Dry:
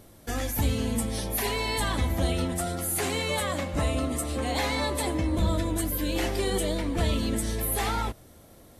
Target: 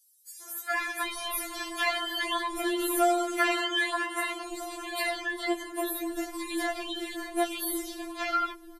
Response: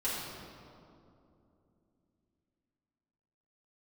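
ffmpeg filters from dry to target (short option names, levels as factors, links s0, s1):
-filter_complex "[0:a]asetnsamples=n=441:p=0,asendcmd='3.9 equalizer g 3.5',equalizer=f=1500:w=0.86:g=14,acrossover=split=280|6000[s0][s1][s2];[s1]adelay=420[s3];[s0]adelay=750[s4];[s4][s3][s2]amix=inputs=3:normalize=0,afftfilt=real='re*4*eq(mod(b,16),0)':imag='im*4*eq(mod(b,16),0)':win_size=2048:overlap=0.75"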